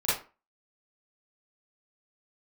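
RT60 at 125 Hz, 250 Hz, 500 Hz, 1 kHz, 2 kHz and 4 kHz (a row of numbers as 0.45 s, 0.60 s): 0.30 s, 0.35 s, 0.35 s, 0.35 s, 0.30 s, 0.25 s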